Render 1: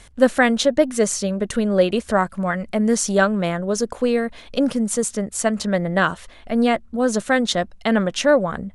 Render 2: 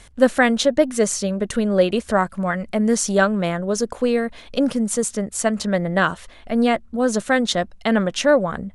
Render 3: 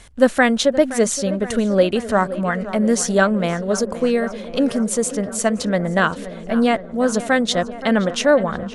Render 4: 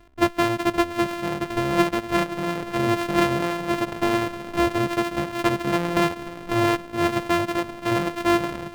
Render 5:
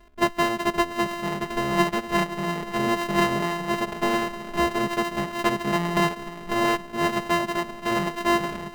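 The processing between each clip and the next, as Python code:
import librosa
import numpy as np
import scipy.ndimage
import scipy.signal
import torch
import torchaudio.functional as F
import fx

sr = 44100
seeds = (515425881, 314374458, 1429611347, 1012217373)

y1 = x
y2 = fx.echo_tape(y1, sr, ms=522, feedback_pct=82, wet_db=-13, lp_hz=2300.0, drive_db=4.0, wow_cents=10)
y2 = y2 * librosa.db_to_amplitude(1.0)
y3 = np.r_[np.sort(y2[:len(y2) // 128 * 128].reshape(-1, 128), axis=1).ravel(), y2[len(y2) // 128 * 128:]]
y3 = fx.rider(y3, sr, range_db=10, speed_s=2.0)
y3 = fx.bass_treble(y3, sr, bass_db=-2, treble_db=-10)
y3 = y3 * librosa.db_to_amplitude(-4.5)
y4 = y3 + 0.89 * np.pad(y3, (int(4.8 * sr / 1000.0), 0))[:len(y3)]
y4 = y4 * librosa.db_to_amplitude(-2.5)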